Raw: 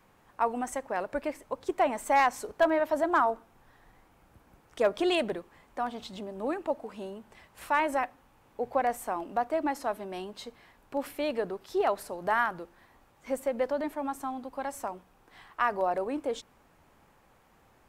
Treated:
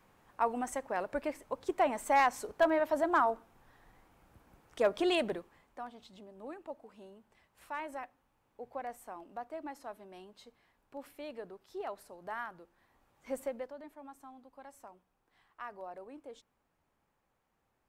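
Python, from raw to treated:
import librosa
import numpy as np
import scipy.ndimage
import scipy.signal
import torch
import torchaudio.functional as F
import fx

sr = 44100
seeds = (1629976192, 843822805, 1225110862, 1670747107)

y = fx.gain(x, sr, db=fx.line((5.34, -3.0), (5.93, -13.5), (12.62, -13.5), (13.43, -5.0), (13.73, -17.0)))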